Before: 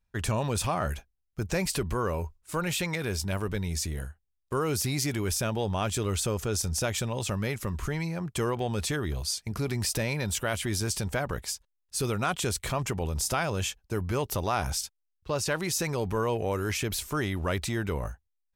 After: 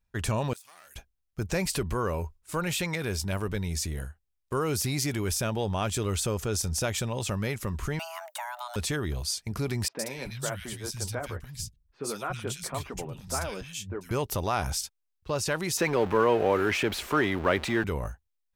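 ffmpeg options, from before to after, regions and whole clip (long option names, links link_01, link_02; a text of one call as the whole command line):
ffmpeg -i in.wav -filter_complex "[0:a]asettb=1/sr,asplit=3[link_01][link_02][link_03];[link_01]atrim=end=0.534[link_04];[link_02]atrim=start=0.53:end=0.96,asetpts=PTS-STARTPTS,afade=type=in:duration=0.004:curve=qsin,afade=type=out:start_time=0.426:duration=0.004:curve=qsin,aeval=exprs='if(lt(val(0),0),0.251*val(0),val(0))':channel_layout=same,aderivative,acompressor=threshold=-46dB:ratio=10:attack=3.2:release=140:knee=1:detection=peak[link_05];[link_03]atrim=start=0.956[link_06];[link_04][link_05]acrossfade=duration=0.004:curve1=hsin:curve2=qsin[link_07];[link_07][link_06]acrossfade=duration=0.004:curve1=qsin:curve2=hsin,asettb=1/sr,asplit=3[link_08][link_09][link_10];[link_08]atrim=end=7.994[link_11];[link_09]atrim=start=7.99:end=8.76,asetpts=PTS-STARTPTS,afade=type=in:duration=0.004:curve=qsin,afade=type=out:start_time=0.766:duration=0.004:curve=qsin,aemphasis=mode=production:type=bsi,acrossover=split=330|2000[link_12][link_13][link_14];[link_12]acompressor=threshold=-43dB:ratio=4[link_15];[link_13]acompressor=threshold=-37dB:ratio=4[link_16];[link_14]acompressor=threshold=-43dB:ratio=4[link_17];[link_15][link_16][link_17]amix=inputs=3:normalize=0,afreqshift=490[link_18];[link_10]atrim=start=8.756[link_19];[link_11][link_18]acrossfade=duration=0.004:curve1=hsin:curve2=qsin[link_20];[link_20][link_19]acrossfade=duration=0.004:curve1=qsin:curve2=hsin,asettb=1/sr,asplit=3[link_21][link_22][link_23];[link_21]atrim=end=9.884[link_24];[link_22]atrim=start=9.88:end=14.11,asetpts=PTS-STARTPTS,afade=type=in:duration=0.004:curve=qsin,afade=type=out:start_time=4.226:duration=0.004:curve=qsin,flanger=delay=1.7:depth=7.3:regen=-38:speed=1.7:shape=triangular,acrossover=split=170|2200[link_25][link_26][link_27];[link_27]adelay=110[link_28];[link_25]adelay=290[link_29];[link_29][link_26][link_28]amix=inputs=3:normalize=0,atrim=end_sample=186543[link_30];[link_23]atrim=start=14.106[link_31];[link_24][link_30]acrossfade=duration=0.004:curve1=hsin:curve2=qsin[link_32];[link_32][link_31]acrossfade=duration=0.004:curve1=qsin:curve2=hsin,asettb=1/sr,asplit=3[link_33][link_34][link_35];[link_33]atrim=end=15.774[link_36];[link_34]atrim=start=15.77:end=17.84,asetpts=PTS-STARTPTS,afade=type=in:duration=0.004:curve=qsin,afade=type=out:start_time=2.066:duration=0.004:curve=qsin,aeval=exprs='val(0)+0.5*0.0188*sgn(val(0))':channel_layout=same,acrossover=split=220 3500:gain=0.224 1 0.178[link_37][link_38][link_39];[link_37][link_38][link_39]amix=inputs=3:normalize=0,acontrast=28[link_40];[link_35]atrim=start=17.836[link_41];[link_36][link_40]acrossfade=duration=0.004:curve1=hsin:curve2=qsin[link_42];[link_42][link_41]acrossfade=duration=0.004:curve1=qsin:curve2=hsin" out.wav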